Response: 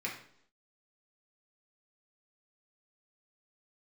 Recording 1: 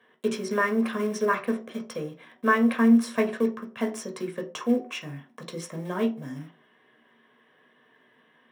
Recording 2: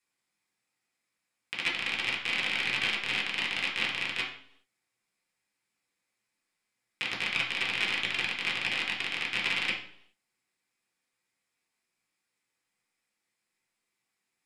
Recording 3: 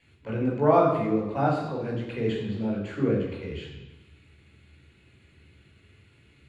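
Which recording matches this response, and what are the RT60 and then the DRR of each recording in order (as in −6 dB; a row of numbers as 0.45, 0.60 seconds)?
2; 0.45, 0.65, 1.0 seconds; 2.0, −3.5, −3.5 decibels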